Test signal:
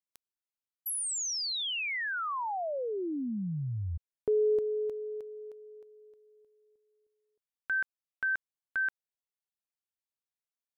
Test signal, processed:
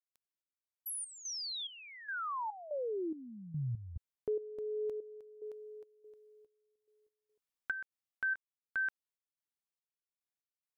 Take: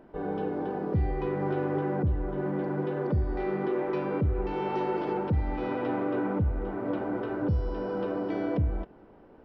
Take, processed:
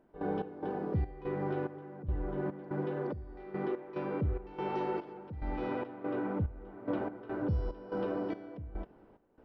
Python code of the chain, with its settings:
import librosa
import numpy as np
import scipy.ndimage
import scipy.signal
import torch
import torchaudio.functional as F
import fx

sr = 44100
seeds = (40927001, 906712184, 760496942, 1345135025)

y = fx.rider(x, sr, range_db=5, speed_s=0.5)
y = fx.step_gate(y, sr, bpm=72, pattern='.x.xx.xx..xx.xx.', floor_db=-12.0, edge_ms=4.5)
y = y * librosa.db_to_amplitude(-4.5)